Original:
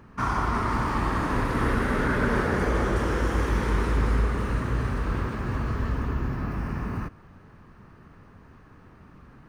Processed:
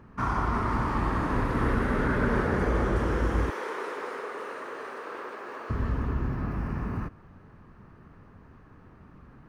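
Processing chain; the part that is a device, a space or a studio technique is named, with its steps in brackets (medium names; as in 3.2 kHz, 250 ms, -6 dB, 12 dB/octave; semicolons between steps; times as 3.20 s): 3.50–5.70 s: Chebyshev high-pass 430 Hz, order 3; behind a face mask (treble shelf 2.6 kHz -7.5 dB); trim -1 dB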